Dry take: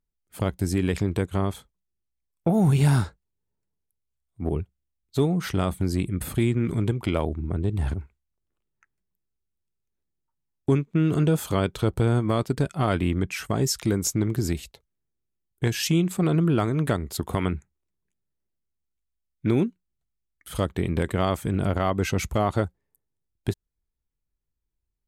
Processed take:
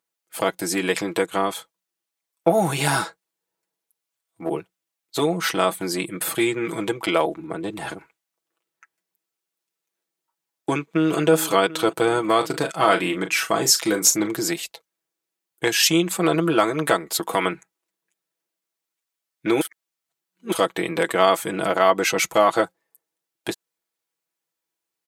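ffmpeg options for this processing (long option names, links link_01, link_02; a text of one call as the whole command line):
ffmpeg -i in.wav -filter_complex "[0:a]asplit=2[link_01][link_02];[link_02]afade=type=in:start_time=10.75:duration=0.01,afade=type=out:start_time=11.18:duration=0.01,aecho=0:1:370|740|1110|1480|1850|2220|2590|2960:0.211349|0.137377|0.0892949|0.0580417|0.0377271|0.0245226|0.0159397|0.0103608[link_03];[link_01][link_03]amix=inputs=2:normalize=0,asettb=1/sr,asplit=3[link_04][link_05][link_06];[link_04]atrim=end=12.374[link_07];[link_05]atrim=start=12.37:end=14.27,asetpts=PTS-STARTPTS,afade=type=in:duration=0.004:curve=qsin,afade=type=out:start_time=1.896:duration=0.004:curve=qsin,asplit=2[link_08][link_09];[link_09]adelay=38,volume=-9.5dB[link_10];[link_08][link_10]amix=inputs=2:normalize=0,atrim=end_sample=83790[link_11];[link_06]atrim=start=14.266[link_12];[link_07][link_11]acrossfade=duration=0.004:curve1=hsin:curve2=qsin[link_13];[link_13][link_12]acrossfade=duration=0.004:curve1=qsin:curve2=hsin,asplit=3[link_14][link_15][link_16];[link_14]atrim=end=19.612[link_17];[link_15]atrim=start=19.608:end=20.522,asetpts=PTS-STARTPTS,areverse[link_18];[link_16]atrim=start=20.518[link_19];[link_17][link_18]acrossfade=duration=0.004:curve1=hsin:curve2=hsin[link_20];[link_20][link_19]acrossfade=duration=0.004:curve1=hsin:curve2=hsin,highpass=490,aecho=1:1:6.1:0.7,volume=8.5dB" out.wav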